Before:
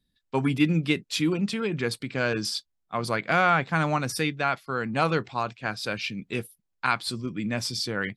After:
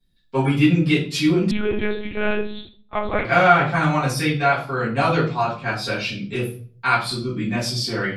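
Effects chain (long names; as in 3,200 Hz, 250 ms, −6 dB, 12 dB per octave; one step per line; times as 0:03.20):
convolution reverb RT60 0.45 s, pre-delay 4 ms, DRR −11 dB
0:01.51–0:03.25: one-pitch LPC vocoder at 8 kHz 210 Hz
level −5.5 dB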